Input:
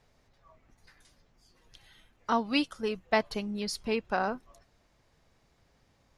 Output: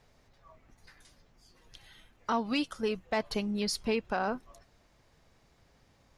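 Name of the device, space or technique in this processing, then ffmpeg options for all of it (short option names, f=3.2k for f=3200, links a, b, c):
soft clipper into limiter: -af "asoftclip=type=tanh:threshold=-14.5dB,alimiter=limit=-23.5dB:level=0:latency=1:release=121,volume=2.5dB"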